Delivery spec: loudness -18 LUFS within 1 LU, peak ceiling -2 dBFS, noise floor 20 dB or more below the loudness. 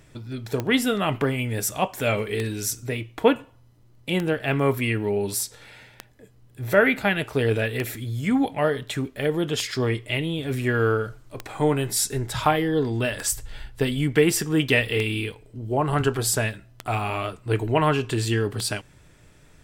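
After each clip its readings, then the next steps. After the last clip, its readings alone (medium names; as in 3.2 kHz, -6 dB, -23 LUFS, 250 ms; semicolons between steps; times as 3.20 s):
clicks found 11; loudness -24.0 LUFS; peak level -4.0 dBFS; loudness target -18.0 LUFS
-> de-click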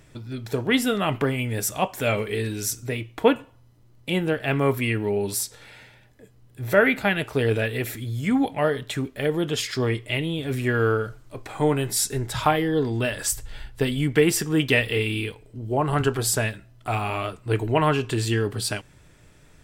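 clicks found 0; loudness -24.0 LUFS; peak level -4.0 dBFS; loudness target -18.0 LUFS
-> trim +6 dB; peak limiter -2 dBFS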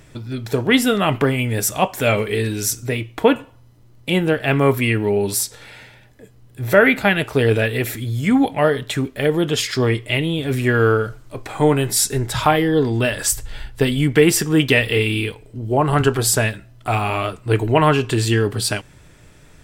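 loudness -18.5 LUFS; peak level -2.0 dBFS; noise floor -48 dBFS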